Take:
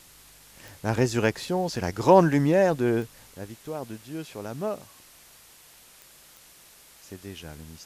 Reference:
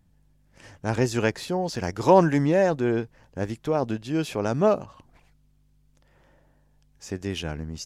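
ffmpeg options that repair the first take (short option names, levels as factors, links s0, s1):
-af "adeclick=t=4,afwtdn=0.0028,asetnsamples=n=441:p=0,asendcmd='3.34 volume volume 10dB',volume=1"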